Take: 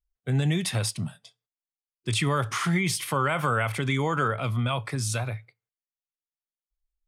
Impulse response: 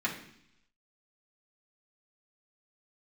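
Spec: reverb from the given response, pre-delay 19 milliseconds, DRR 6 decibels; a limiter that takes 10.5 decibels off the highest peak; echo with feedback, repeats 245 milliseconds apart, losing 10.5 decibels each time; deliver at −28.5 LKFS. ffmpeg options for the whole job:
-filter_complex "[0:a]alimiter=limit=-22.5dB:level=0:latency=1,aecho=1:1:245|490|735:0.299|0.0896|0.0269,asplit=2[link_01][link_02];[1:a]atrim=start_sample=2205,adelay=19[link_03];[link_02][link_03]afir=irnorm=-1:irlink=0,volume=-13.5dB[link_04];[link_01][link_04]amix=inputs=2:normalize=0,volume=2dB"

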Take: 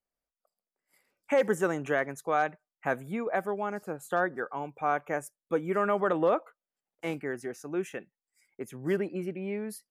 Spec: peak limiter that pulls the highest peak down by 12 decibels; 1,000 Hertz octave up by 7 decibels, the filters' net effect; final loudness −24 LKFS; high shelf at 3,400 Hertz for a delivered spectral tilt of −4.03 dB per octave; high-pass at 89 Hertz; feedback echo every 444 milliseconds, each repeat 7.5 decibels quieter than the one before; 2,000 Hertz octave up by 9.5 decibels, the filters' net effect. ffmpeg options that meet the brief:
ffmpeg -i in.wav -af "highpass=89,equalizer=frequency=1000:width_type=o:gain=7,equalizer=frequency=2000:width_type=o:gain=9,highshelf=frequency=3400:gain=3,alimiter=limit=-19.5dB:level=0:latency=1,aecho=1:1:444|888|1332|1776|2220:0.422|0.177|0.0744|0.0312|0.0131,volume=8dB" out.wav

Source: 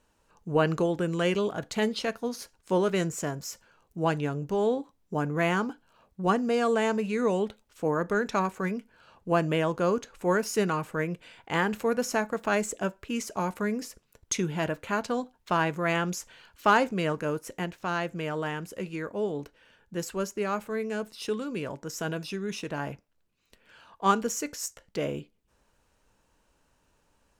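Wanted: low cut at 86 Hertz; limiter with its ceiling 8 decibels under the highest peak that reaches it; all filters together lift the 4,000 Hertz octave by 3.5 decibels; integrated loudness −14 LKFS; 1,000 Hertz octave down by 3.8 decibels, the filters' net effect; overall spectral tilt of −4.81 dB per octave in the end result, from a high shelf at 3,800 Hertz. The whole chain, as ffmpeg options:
ffmpeg -i in.wav -af "highpass=86,equalizer=frequency=1000:width_type=o:gain=-5,highshelf=frequency=3800:gain=-4.5,equalizer=frequency=4000:width_type=o:gain=8.5,volume=17.5dB,alimiter=limit=-2dB:level=0:latency=1" out.wav

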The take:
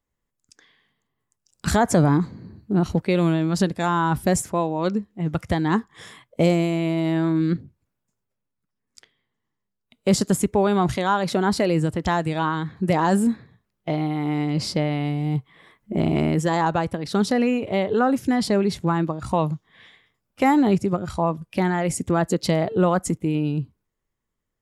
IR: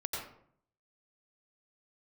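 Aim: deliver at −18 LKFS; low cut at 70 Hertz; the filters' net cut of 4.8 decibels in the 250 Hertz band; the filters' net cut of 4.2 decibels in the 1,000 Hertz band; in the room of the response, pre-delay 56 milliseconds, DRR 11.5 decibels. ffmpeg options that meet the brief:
-filter_complex "[0:a]highpass=70,equalizer=frequency=250:width_type=o:gain=-7,equalizer=frequency=1000:width_type=o:gain=-5,asplit=2[link_01][link_02];[1:a]atrim=start_sample=2205,adelay=56[link_03];[link_02][link_03]afir=irnorm=-1:irlink=0,volume=-14.5dB[link_04];[link_01][link_04]amix=inputs=2:normalize=0,volume=8dB"

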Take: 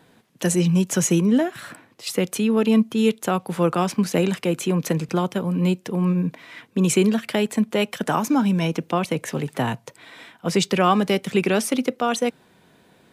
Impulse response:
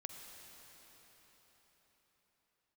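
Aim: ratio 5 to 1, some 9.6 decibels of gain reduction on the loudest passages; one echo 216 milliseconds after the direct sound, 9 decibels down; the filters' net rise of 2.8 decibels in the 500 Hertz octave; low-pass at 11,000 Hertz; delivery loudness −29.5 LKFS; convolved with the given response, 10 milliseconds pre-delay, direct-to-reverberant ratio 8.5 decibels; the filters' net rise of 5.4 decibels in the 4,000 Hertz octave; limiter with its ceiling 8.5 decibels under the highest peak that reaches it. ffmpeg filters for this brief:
-filter_complex "[0:a]lowpass=11000,equalizer=frequency=500:width_type=o:gain=3.5,equalizer=frequency=4000:width_type=o:gain=7.5,acompressor=threshold=-23dB:ratio=5,alimiter=limit=-18dB:level=0:latency=1,aecho=1:1:216:0.355,asplit=2[link_01][link_02];[1:a]atrim=start_sample=2205,adelay=10[link_03];[link_02][link_03]afir=irnorm=-1:irlink=0,volume=-5.5dB[link_04];[link_01][link_04]amix=inputs=2:normalize=0,volume=-1.5dB"

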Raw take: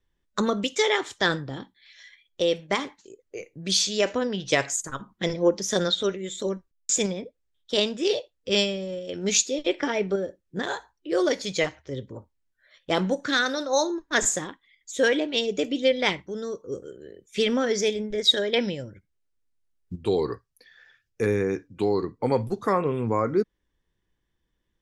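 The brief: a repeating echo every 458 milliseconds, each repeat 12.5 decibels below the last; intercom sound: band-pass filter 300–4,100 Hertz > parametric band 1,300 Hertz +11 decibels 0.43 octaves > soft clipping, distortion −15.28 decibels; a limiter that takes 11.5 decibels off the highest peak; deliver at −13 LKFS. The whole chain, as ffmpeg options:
ffmpeg -i in.wav -af "alimiter=limit=-18.5dB:level=0:latency=1,highpass=300,lowpass=4100,equalizer=frequency=1300:width_type=o:width=0.43:gain=11,aecho=1:1:458|916|1374:0.237|0.0569|0.0137,asoftclip=threshold=-22dB,volume=19.5dB" out.wav

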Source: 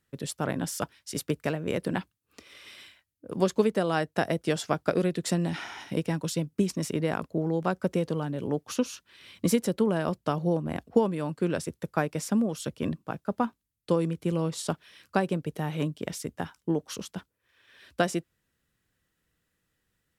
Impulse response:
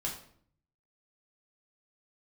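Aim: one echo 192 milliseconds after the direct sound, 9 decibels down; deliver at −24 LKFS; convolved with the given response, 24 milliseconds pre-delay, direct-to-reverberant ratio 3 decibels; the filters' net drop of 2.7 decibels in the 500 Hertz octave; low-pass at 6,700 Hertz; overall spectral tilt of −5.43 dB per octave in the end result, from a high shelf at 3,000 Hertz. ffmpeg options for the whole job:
-filter_complex "[0:a]lowpass=6700,equalizer=frequency=500:width_type=o:gain=-3.5,highshelf=frequency=3000:gain=7,aecho=1:1:192:0.355,asplit=2[link_01][link_02];[1:a]atrim=start_sample=2205,adelay=24[link_03];[link_02][link_03]afir=irnorm=-1:irlink=0,volume=-5.5dB[link_04];[link_01][link_04]amix=inputs=2:normalize=0,volume=3.5dB"

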